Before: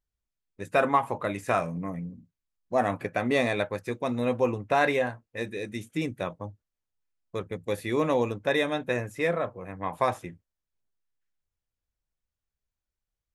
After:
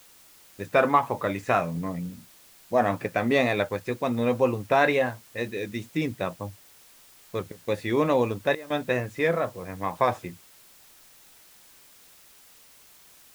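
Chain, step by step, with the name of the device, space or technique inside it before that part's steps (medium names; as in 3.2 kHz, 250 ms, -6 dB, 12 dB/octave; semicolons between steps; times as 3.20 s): worn cassette (low-pass 6.1 kHz; wow and flutter; level dips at 7.52/8.55 s, 151 ms -17 dB; white noise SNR 26 dB); trim +2.5 dB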